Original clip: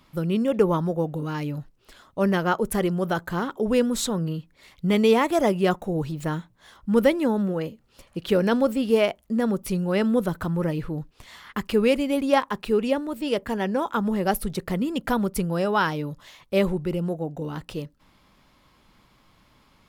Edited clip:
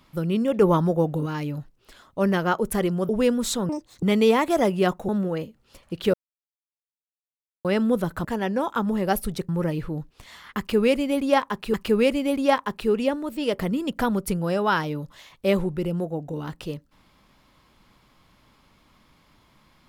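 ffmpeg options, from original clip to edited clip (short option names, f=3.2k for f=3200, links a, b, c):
-filter_complex "[0:a]asplit=13[a][b][c][d][e][f][g][h][i][j][k][l][m];[a]atrim=end=0.622[n];[b]atrim=start=0.618:end=1.262,asetpts=PTS-STARTPTS,volume=3.5dB[o];[c]atrim=start=1.258:end=3.092[p];[d]atrim=start=3.608:end=4.214[q];[e]atrim=start=4.21:end=4.85,asetpts=PTS-STARTPTS,asetrate=83790,aresample=44100[r];[f]atrim=start=4.846:end=5.912[s];[g]atrim=start=7.328:end=8.38,asetpts=PTS-STARTPTS,afade=t=out:st=1.048:d=0.004:c=hsin[t];[h]atrim=start=8.38:end=9.89,asetpts=PTS-STARTPTS,volume=0[u];[i]atrim=start=9.89:end=10.492,asetpts=PTS-STARTPTS,afade=t=in:d=0.004:c=hsin[v];[j]atrim=start=13.428:end=14.672[w];[k]atrim=start=10.488:end=12.742[x];[l]atrim=start=11.578:end=13.432[y];[m]atrim=start=14.668[z];[n][o]acrossfade=d=0.004:c1=hsin:c2=hsin[aa];[aa][p]acrossfade=d=0.004:c1=hsin:c2=hsin[ab];[ab][q]acrossfade=d=0.004:c1=hsin:c2=hsin[ac];[ac][r]acrossfade=d=0.004:c1=hsin:c2=hsin[ad];[ad][s]acrossfade=d=0.004:c1=hsin:c2=hsin[ae];[t][u][v]concat=n=3:v=0:a=1[af];[ae][af]acrossfade=d=0.004:c1=hsin:c2=hsin[ag];[ag][w]acrossfade=d=0.004:c1=hsin:c2=hsin[ah];[ah][x]acrossfade=d=0.004:c1=hsin:c2=hsin[ai];[ai][y]acrossfade=d=0.004:c1=hsin:c2=hsin[aj];[aj][z]acrossfade=d=0.004:c1=hsin:c2=hsin"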